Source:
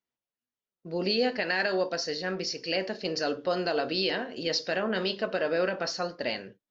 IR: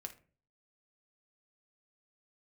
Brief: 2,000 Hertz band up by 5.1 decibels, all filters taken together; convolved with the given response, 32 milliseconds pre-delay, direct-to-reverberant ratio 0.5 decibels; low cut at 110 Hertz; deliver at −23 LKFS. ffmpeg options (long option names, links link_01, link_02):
-filter_complex "[0:a]highpass=110,equalizer=frequency=2000:width_type=o:gain=6.5,asplit=2[link_01][link_02];[1:a]atrim=start_sample=2205,adelay=32[link_03];[link_02][link_03]afir=irnorm=-1:irlink=0,volume=3.5dB[link_04];[link_01][link_04]amix=inputs=2:normalize=0,volume=1.5dB"